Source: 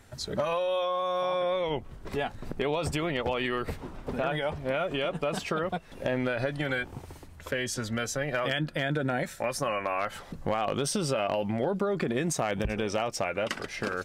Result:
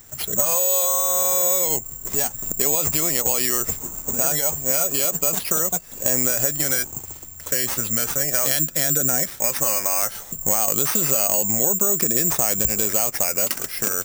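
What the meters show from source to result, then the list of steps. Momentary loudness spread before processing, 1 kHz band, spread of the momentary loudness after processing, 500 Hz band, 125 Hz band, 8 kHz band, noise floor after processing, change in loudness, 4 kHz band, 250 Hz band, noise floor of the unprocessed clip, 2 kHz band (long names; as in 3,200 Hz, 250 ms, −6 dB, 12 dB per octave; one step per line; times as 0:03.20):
6 LU, +1.0 dB, 6 LU, +1.0 dB, +1.0 dB, +22.5 dB, −39 dBFS, +12.0 dB, +6.0 dB, +1.0 dB, −47 dBFS, +1.5 dB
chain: bad sample-rate conversion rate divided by 6×, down none, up zero stuff
level +1 dB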